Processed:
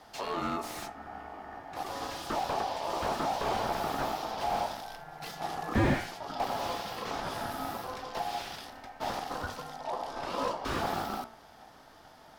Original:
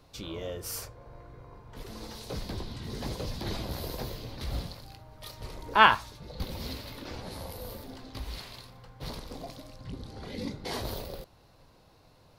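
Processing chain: de-hum 59.91 Hz, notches 38; ring modulator 770 Hz; maximiser +8 dB; slew limiter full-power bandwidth 42 Hz

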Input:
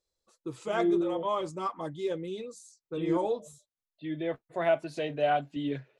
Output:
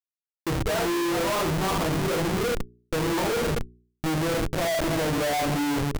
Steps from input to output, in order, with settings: LPF 1400 Hz 24 dB/oct; bell 190 Hz +3.5 dB 0.96 oct; echo 0.23 s -24 dB; transient shaper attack -3 dB, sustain +4 dB; reverb RT60 0.45 s, pre-delay 6 ms, DRR -4 dB; Schmitt trigger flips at -35 dBFS; de-hum 60.06 Hz, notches 7

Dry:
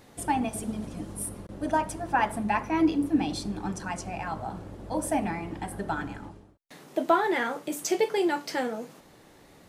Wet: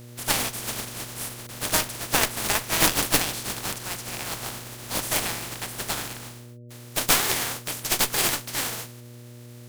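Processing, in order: spectral contrast lowered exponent 0.19; added harmonics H 4 -8 dB, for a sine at -6 dBFS; buzz 120 Hz, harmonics 5, -45 dBFS -7 dB/oct; gain +1 dB

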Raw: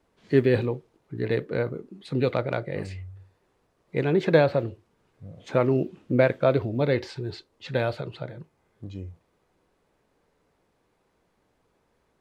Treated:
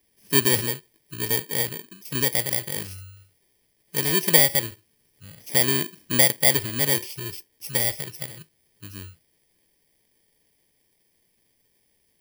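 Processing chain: FFT order left unsorted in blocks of 32 samples; resonant high shelf 1700 Hz +8.5 dB, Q 1.5; gain -3.5 dB

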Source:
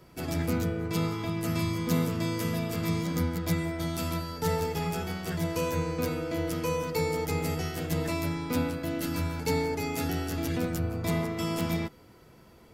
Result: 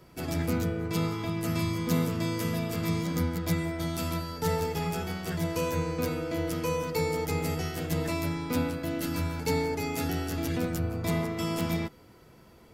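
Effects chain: 7.58–10.12 crackle 130/s -55 dBFS

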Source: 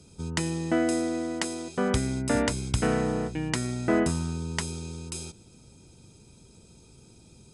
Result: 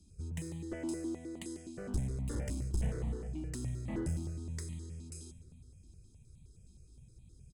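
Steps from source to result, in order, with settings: passive tone stack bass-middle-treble 10-0-1; one-sided clip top -44 dBFS; echo 0.143 s -18 dB; on a send at -10 dB: reverb RT60 2.1 s, pre-delay 6 ms; on the sum: step phaser 9.6 Hz 480–1500 Hz; gain +10 dB

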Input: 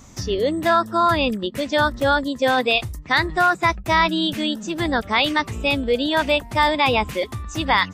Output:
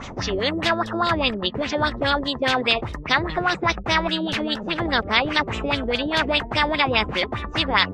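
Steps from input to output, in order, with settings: LFO low-pass sine 4.9 Hz 380–3700 Hz; spectral compressor 2:1; gain -1 dB

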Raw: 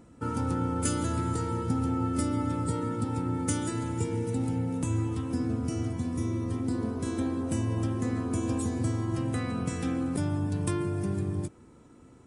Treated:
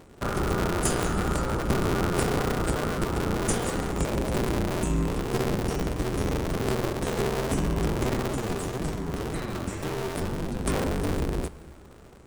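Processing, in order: cycle switcher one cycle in 2, inverted; 8.31–10.66 flange 1.9 Hz, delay 5.9 ms, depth 6.5 ms, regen +41%; reverb RT60 2.7 s, pre-delay 7 ms, DRR 16 dB; gain +3 dB

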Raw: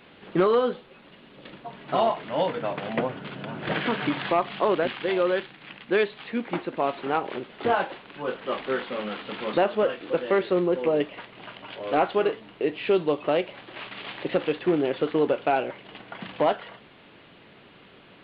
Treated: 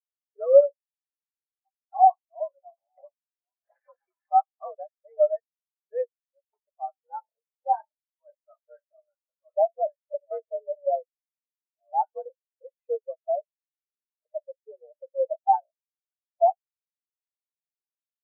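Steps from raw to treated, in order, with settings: mistuned SSB +75 Hz 460–2400 Hz; spectral expander 4:1; gain +6 dB

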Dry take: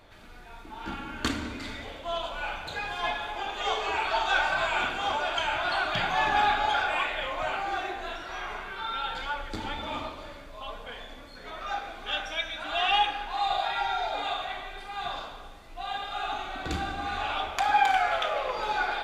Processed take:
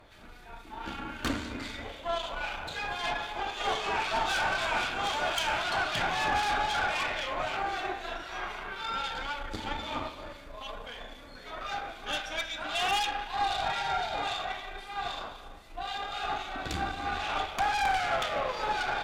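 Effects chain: 5.04–5.64 high shelf 4400 Hz +6.5 dB; tube stage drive 27 dB, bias 0.7; harmonic tremolo 3.8 Hz, depth 50%, crossover 2200 Hz; gain +5 dB

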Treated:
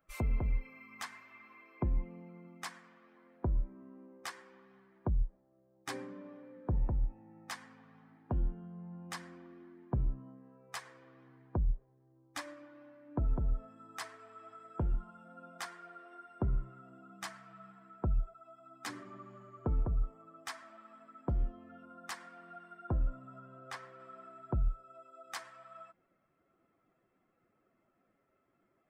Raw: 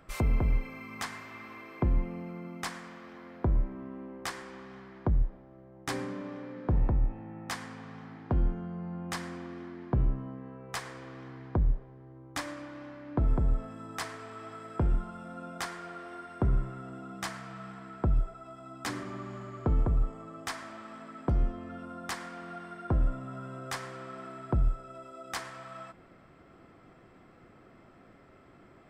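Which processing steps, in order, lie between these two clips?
per-bin expansion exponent 1.5; 23.4–24 high shelf 5300 Hz -11 dB; gain -4 dB

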